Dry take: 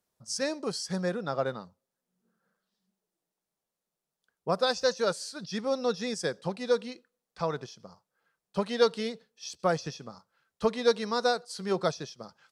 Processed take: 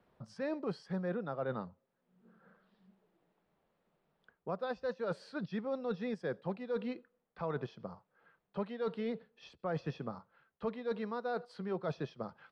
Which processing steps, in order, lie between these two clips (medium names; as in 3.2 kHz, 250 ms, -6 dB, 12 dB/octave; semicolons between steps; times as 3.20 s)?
reverse; compression 12:1, threshold -35 dBFS, peak gain reduction 18 dB; reverse; distance through air 480 m; three bands compressed up and down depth 40%; trim +3.5 dB